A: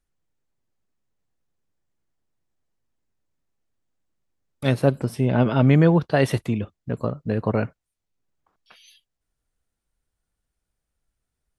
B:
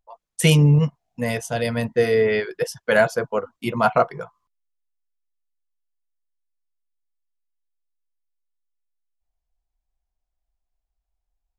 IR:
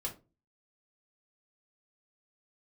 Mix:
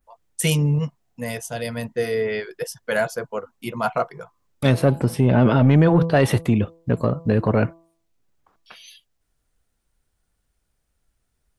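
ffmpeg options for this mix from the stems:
-filter_complex "[0:a]bandreject=f=165.8:t=h:w=4,bandreject=f=331.6:t=h:w=4,bandreject=f=497.4:t=h:w=4,bandreject=f=663.2:t=h:w=4,bandreject=f=829:t=h:w=4,bandreject=f=994.8:t=h:w=4,bandreject=f=1.1606k:t=h:w=4,adynamicequalizer=threshold=0.00562:dfrequency=5100:dqfactor=0.73:tfrequency=5100:tqfactor=0.73:attack=5:release=100:ratio=0.375:range=2.5:mode=cutabove:tftype=bell,volume=0dB[a];[1:a]highshelf=f=7.6k:g=10,volume=-12dB[b];[a][b]amix=inputs=2:normalize=0,acontrast=86,alimiter=limit=-8.5dB:level=0:latency=1:release=20"

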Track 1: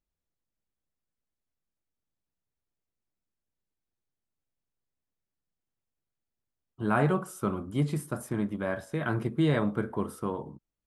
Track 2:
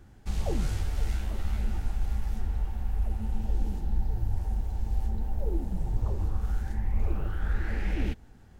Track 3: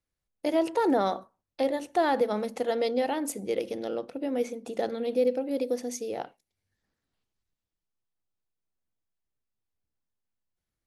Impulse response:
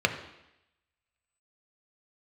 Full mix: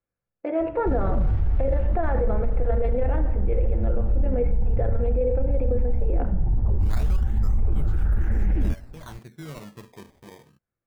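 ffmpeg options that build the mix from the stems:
-filter_complex "[0:a]equalizer=f=300:w=1.1:g=-6,acrusher=samples=18:mix=1:aa=0.000001:lfo=1:lforange=28.8:lforate=0.22,volume=-10.5dB[a];[1:a]lowpass=1.7k,lowshelf=f=290:g=11,adelay=600,volume=0dB[b];[2:a]lowpass=f=2k:w=0.5412,lowpass=f=2k:w=1.3066,volume=-8dB,asplit=2[c][d];[d]volume=-3.5dB[e];[3:a]atrim=start_sample=2205[f];[e][f]afir=irnorm=-1:irlink=0[g];[a][b][c][g]amix=inputs=4:normalize=0,alimiter=limit=-15dB:level=0:latency=1:release=12"

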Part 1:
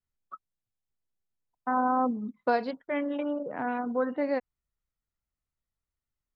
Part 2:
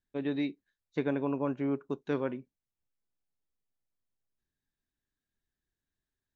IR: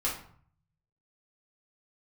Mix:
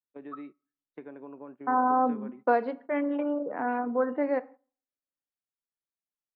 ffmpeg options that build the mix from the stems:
-filter_complex "[0:a]volume=1dB,asplit=2[a][b];[b]volume=-19.5dB[c];[1:a]acompressor=threshold=-32dB:ratio=8,volume=-7dB,asplit=2[d][e];[e]volume=-22dB[f];[2:a]atrim=start_sample=2205[g];[c][f]amix=inputs=2:normalize=0[h];[h][g]afir=irnorm=-1:irlink=0[i];[a][d][i]amix=inputs=3:normalize=0,agate=range=-12dB:threshold=-46dB:ratio=16:detection=peak,acrossover=split=180 2400:gain=0.0708 1 0.0794[j][k][l];[j][k][l]amix=inputs=3:normalize=0"

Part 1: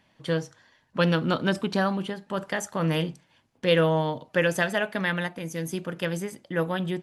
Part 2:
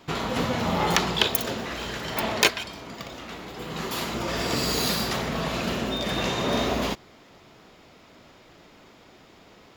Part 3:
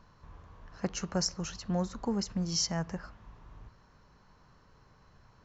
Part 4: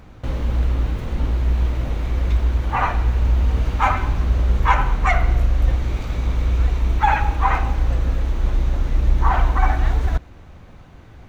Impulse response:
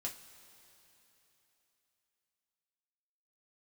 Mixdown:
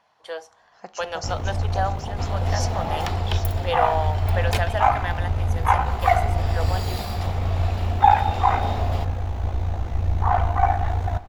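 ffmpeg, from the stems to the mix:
-filter_complex "[0:a]highpass=f=490:w=0.5412,highpass=f=490:w=1.3066,volume=-5dB[a];[1:a]bandreject=f=6.3k:w=6.3,adelay=2100,volume=-11.5dB,asplit=2[b][c];[c]volume=-10dB[d];[2:a]highpass=f=800:p=1,volume=-5dB,asplit=3[e][f][g];[f]volume=-8dB[h];[g]volume=-9dB[i];[3:a]aeval=exprs='val(0)*sin(2*PI*28*n/s)':c=same,adelay=1000,volume=-6.5dB,asplit=2[j][k];[k]volume=-3.5dB[l];[4:a]atrim=start_sample=2205[m];[d][h][l]amix=inputs=3:normalize=0[n];[n][m]afir=irnorm=-1:irlink=0[o];[i]aecho=0:1:776:1[p];[a][b][e][j][o][p]amix=inputs=6:normalize=0,equalizer=f=750:t=o:w=0.52:g=12.5"

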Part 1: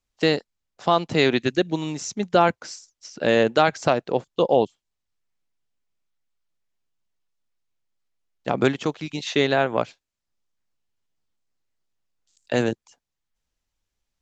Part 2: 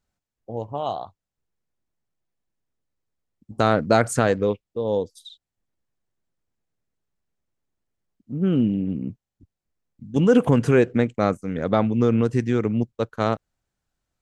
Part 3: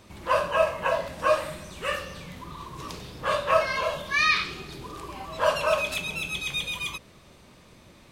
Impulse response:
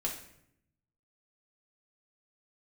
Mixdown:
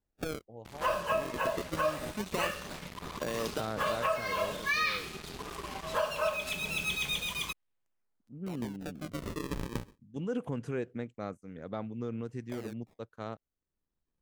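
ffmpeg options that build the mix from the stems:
-filter_complex "[0:a]acompressor=threshold=-24dB:ratio=12,alimiter=limit=-16dB:level=0:latency=1:release=196,acrusher=samples=35:mix=1:aa=0.000001:lfo=1:lforange=56:lforate=0.23,volume=-5dB[a];[1:a]volume=-18dB,asplit=2[b][c];[2:a]aecho=1:1:4.7:0.32,acrusher=bits=5:mix=0:aa=0.5,adelay=550,volume=-2.5dB[d];[c]apad=whole_len=627088[e];[a][e]sidechaincompress=threshold=-41dB:ratio=8:attack=11:release=959[f];[f][b][d]amix=inputs=3:normalize=0,alimiter=limit=-20dB:level=0:latency=1:release=486"

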